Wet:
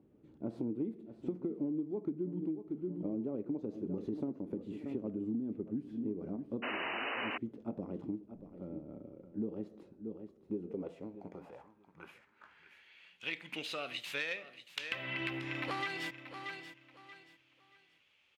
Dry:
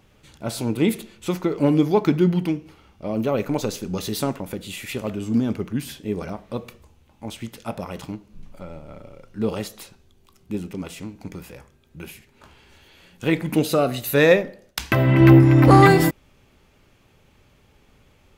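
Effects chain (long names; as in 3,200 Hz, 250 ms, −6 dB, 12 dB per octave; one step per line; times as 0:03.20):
stylus tracing distortion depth 0.096 ms
low-shelf EQ 410 Hz +6.5 dB
on a send: repeating echo 631 ms, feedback 27%, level −14 dB
on the sum: band-pass filter sweep 310 Hz → 2,800 Hz, 0:10.25–0:13.24
sound drawn into the spectrogram noise, 0:06.62–0:07.38, 240–3,000 Hz −30 dBFS
downward compressor 12 to 1, threshold −30 dBFS, peak gain reduction 20.5 dB
level −3.5 dB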